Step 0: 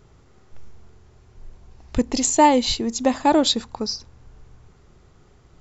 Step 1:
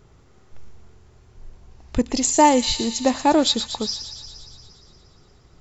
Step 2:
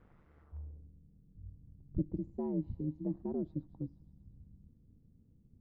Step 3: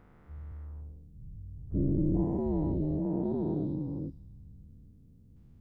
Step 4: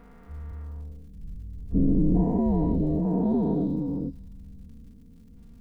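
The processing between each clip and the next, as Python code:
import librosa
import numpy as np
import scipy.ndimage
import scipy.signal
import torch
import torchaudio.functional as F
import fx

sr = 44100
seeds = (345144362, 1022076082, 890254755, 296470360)

y1 = fx.echo_wet_highpass(x, sr, ms=117, feedback_pct=72, hz=2500.0, wet_db=-8)
y2 = fx.filter_sweep_lowpass(y1, sr, from_hz=1800.0, to_hz=190.0, start_s=0.4, end_s=0.9, q=1.5)
y2 = y2 * np.sin(2.0 * np.pi * 75.0 * np.arange(len(y2)) / sr)
y2 = F.gain(torch.from_numpy(y2), -8.5).numpy()
y3 = fx.spec_dilate(y2, sr, span_ms=480)
y4 = fx.dmg_crackle(y3, sr, seeds[0], per_s=96.0, level_db=-60.0)
y4 = y4 + 0.83 * np.pad(y4, (int(4.3 * sr / 1000.0), 0))[:len(y4)]
y4 = F.gain(torch.from_numpy(y4), 5.5).numpy()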